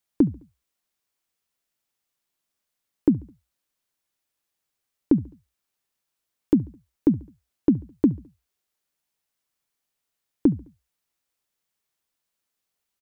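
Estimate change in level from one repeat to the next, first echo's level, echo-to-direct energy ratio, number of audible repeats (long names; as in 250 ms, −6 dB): −5.5 dB, −24.0 dB, −22.5 dB, 2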